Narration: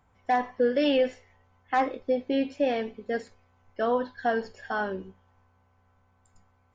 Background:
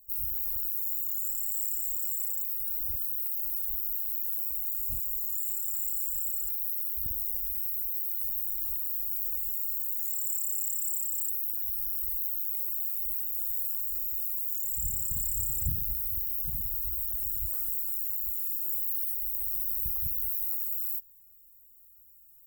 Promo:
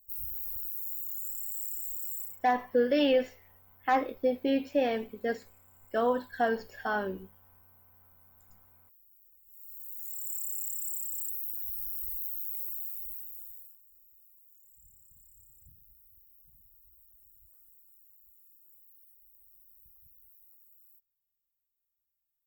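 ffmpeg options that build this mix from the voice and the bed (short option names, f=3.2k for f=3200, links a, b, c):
-filter_complex "[0:a]adelay=2150,volume=-1.5dB[a];[1:a]volume=19.5dB,afade=t=out:st=2.19:d=0.21:silence=0.0630957,afade=t=in:st=9.46:d=0.96:silence=0.0562341,afade=t=out:st=12.65:d=1.13:silence=0.0668344[b];[a][b]amix=inputs=2:normalize=0"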